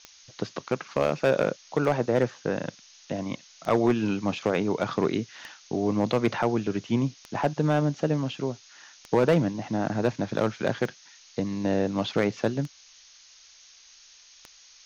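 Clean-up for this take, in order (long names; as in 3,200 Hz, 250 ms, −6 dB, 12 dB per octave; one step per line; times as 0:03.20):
clipped peaks rebuilt −14 dBFS
click removal
noise reduction from a noise print 18 dB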